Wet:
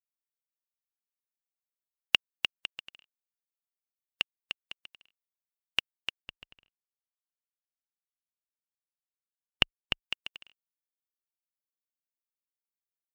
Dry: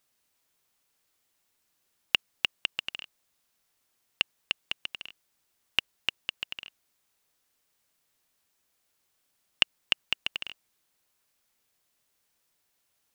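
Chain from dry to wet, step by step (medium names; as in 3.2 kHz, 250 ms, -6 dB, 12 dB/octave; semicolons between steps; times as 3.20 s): expander on every frequency bin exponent 2; 6.22–10.01 s: tilt EQ -2.5 dB/octave; trim +3 dB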